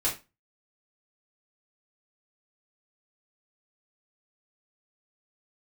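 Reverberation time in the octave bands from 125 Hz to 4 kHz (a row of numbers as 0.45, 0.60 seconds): 0.35, 0.30, 0.25, 0.25, 0.25, 0.25 seconds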